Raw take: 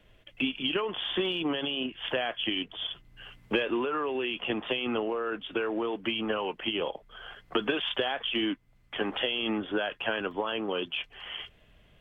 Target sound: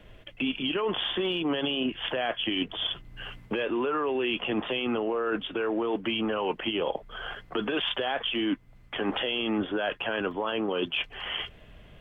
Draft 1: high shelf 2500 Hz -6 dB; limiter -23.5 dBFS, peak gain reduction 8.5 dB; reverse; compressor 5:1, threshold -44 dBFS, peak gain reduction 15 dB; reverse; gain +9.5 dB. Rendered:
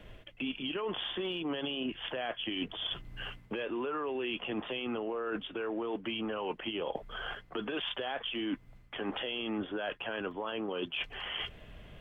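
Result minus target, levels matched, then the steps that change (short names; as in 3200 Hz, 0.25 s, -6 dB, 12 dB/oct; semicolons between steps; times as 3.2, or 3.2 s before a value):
compressor: peak gain reduction +7 dB
change: compressor 5:1, threshold -35 dBFS, peak gain reduction 7.5 dB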